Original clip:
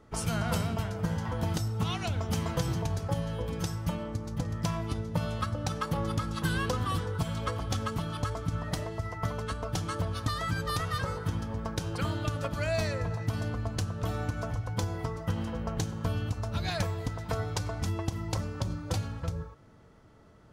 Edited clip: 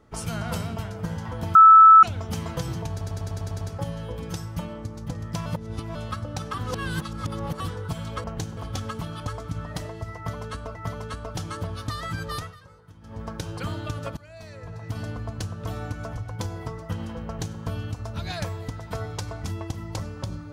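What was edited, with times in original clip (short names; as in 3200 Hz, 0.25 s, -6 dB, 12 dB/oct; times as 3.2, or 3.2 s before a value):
1.55–2.03 bleep 1310 Hz -7 dBFS
2.91 stutter 0.10 s, 8 plays
4.76–5.25 reverse
5.84–6.9 reverse
9.13–9.72 loop, 2 plays
10.73–11.6 dip -18 dB, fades 0.21 s
12.55–13.37 fade in quadratic, from -18 dB
15.64–15.97 copy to 7.54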